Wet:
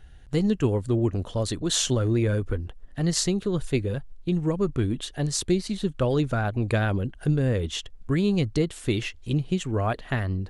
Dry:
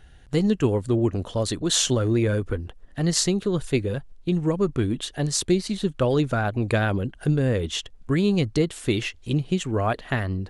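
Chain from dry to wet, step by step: bass shelf 100 Hz +6.5 dB; trim -3 dB

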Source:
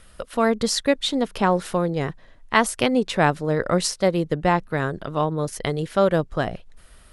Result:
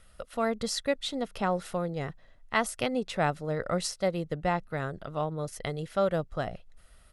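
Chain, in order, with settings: comb 1.5 ms, depth 30%; trim -9 dB

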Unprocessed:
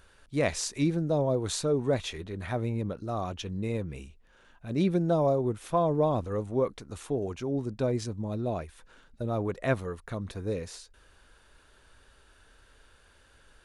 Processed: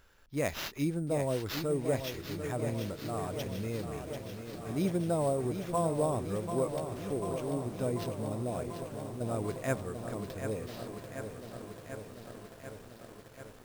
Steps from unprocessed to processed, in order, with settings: sample-rate reducer 8.9 kHz, jitter 0%; echo that smears into a reverb 1527 ms, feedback 46%, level -16 dB; bit-crushed delay 740 ms, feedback 80%, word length 8-bit, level -8 dB; trim -5 dB

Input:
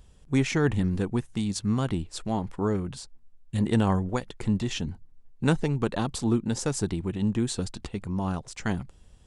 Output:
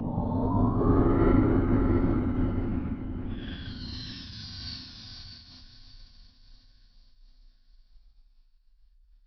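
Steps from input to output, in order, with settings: phaser 1.1 Hz, delay 1.3 ms, feedback 75%; tilt EQ +4.5 dB/octave; Paulstretch 11×, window 0.05 s, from 2.61 s; steep low-pass 6.9 kHz 96 dB/octave; tone controls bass +7 dB, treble -14 dB; echo that smears into a reverb 610 ms, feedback 44%, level -4 dB; frequency shift -51 Hz; formant-preserving pitch shift -6.5 st; random flutter of the level, depth 60%

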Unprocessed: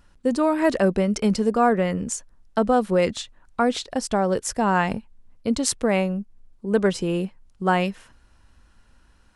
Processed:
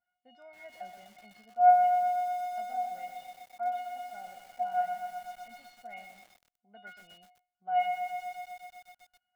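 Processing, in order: cabinet simulation 210–3200 Hz, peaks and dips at 220 Hz +3 dB, 320 Hz -9 dB, 450 Hz -7 dB, 720 Hz +8 dB, 1.3 kHz -7 dB, 2 kHz +7 dB; feedback comb 720 Hz, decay 0.44 s, mix 100%; bit-crushed delay 125 ms, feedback 80%, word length 9-bit, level -6 dB

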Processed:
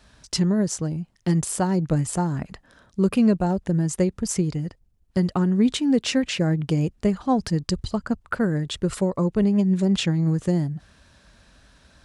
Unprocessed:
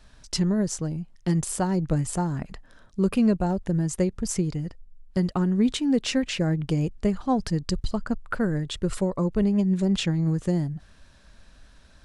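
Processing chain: high-pass 55 Hz 12 dB/octave; trim +2.5 dB

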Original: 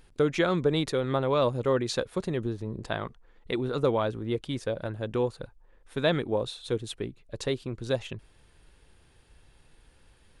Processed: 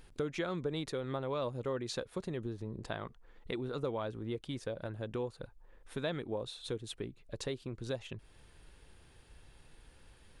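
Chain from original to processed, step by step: compression 2:1, threshold -42 dBFS, peak gain reduction 12.5 dB

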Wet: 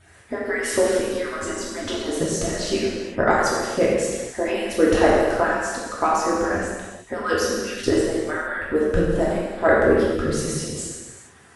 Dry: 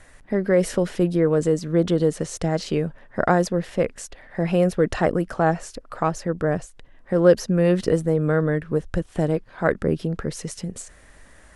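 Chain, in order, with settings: harmonic-percussive separation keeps percussive; gated-style reverb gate 490 ms falling, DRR -6.5 dB

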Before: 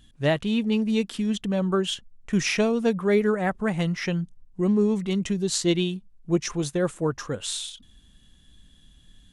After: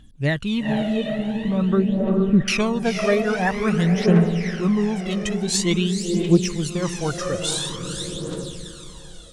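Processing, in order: 0.65–2.48 s: low-pass 1.3 kHz 24 dB/octave; echo that smears into a reverb 473 ms, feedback 53%, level -6 dB; phaser 0.48 Hz, delay 1.7 ms, feedback 65%; level rider gain up to 4.5 dB; trim -2 dB

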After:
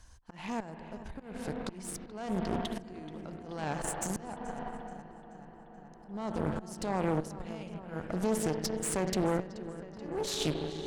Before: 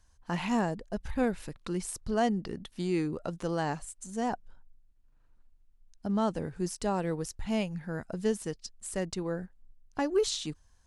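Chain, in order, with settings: spring tank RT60 2 s, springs 32/43 ms, chirp 65 ms, DRR 9 dB; in parallel at +0.5 dB: compression 10:1, threshold -43 dBFS, peak gain reduction 21 dB; on the sum: peak limiter -25 dBFS, peak gain reduction 11 dB; trance gate "xxx...xxxxx" 75 bpm -12 dB; slow attack 473 ms; on a send: filtered feedback delay 430 ms, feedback 82%, low-pass 4.4 kHz, level -14 dB; on the sum: Chebyshev shaper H 4 -12 dB, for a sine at -23 dBFS; loudspeaker Doppler distortion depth 0.35 ms; trim +3 dB

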